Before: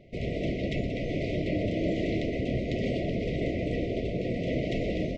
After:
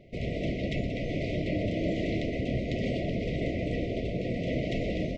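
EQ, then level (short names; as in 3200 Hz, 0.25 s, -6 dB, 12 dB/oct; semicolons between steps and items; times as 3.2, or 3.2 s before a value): dynamic EQ 390 Hz, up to -3 dB, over -42 dBFS, Q 2; 0.0 dB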